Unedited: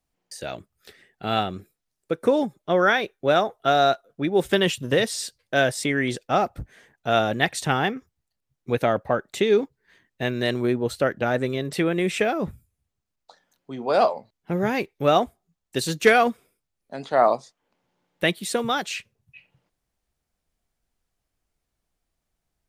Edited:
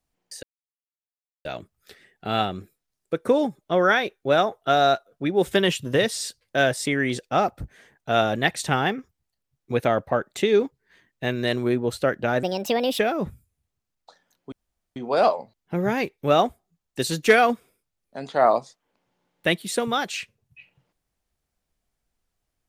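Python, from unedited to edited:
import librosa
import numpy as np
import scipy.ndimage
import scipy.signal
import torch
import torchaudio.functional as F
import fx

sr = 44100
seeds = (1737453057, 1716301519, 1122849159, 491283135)

y = fx.edit(x, sr, fx.insert_silence(at_s=0.43, length_s=1.02),
    fx.speed_span(start_s=11.41, length_s=0.79, speed=1.41),
    fx.insert_room_tone(at_s=13.73, length_s=0.44), tone=tone)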